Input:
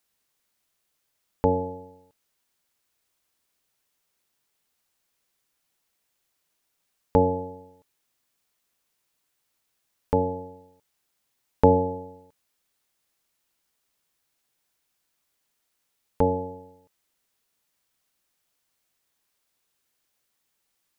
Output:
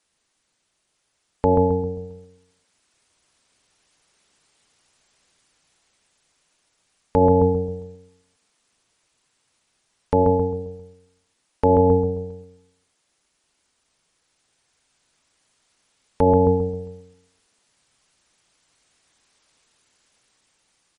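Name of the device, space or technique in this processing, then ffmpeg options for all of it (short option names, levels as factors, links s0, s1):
low-bitrate web radio: -filter_complex "[0:a]asettb=1/sr,asplit=3[s0][s1][s2];[s0]atrim=end=10.174[s3];[s1]atrim=start=10.17:end=11.87,asetpts=PTS-STARTPTS,afade=t=in:d=0.004:c=qsin,afade=t=out:st=1.696:d=0.004:c=qsin,equalizer=f=150:t=o:w=0.56:g=-5[s4];[s2]atrim=start=11.866[s5];[s3][s4]acrossfade=d=0.004:c1=hsin:c2=qsin[s6];[s6][s5]acrossfade=d=0.004:c1=qsin:c2=hsin,asplit=2[s7][s8];[s8]adelay=133,lowpass=f=1000:p=1,volume=0.531,asplit=2[s9][s10];[s10]adelay=133,lowpass=f=1000:p=1,volume=0.43,asplit=2[s11][s12];[s12]adelay=133,lowpass=f=1000:p=1,volume=0.43,asplit=2[s13][s14];[s14]adelay=133,lowpass=f=1000:p=1,volume=0.43,asplit=2[s15][s16];[s16]adelay=133,lowpass=f=1000:p=1,volume=0.43[s17];[s7][s9][s11][s13][s15][s17]amix=inputs=6:normalize=0,dynaudnorm=f=880:g=5:m=2.82,alimiter=limit=0.266:level=0:latency=1:release=86,volume=2" -ar 48000 -c:a libmp3lame -b:a 40k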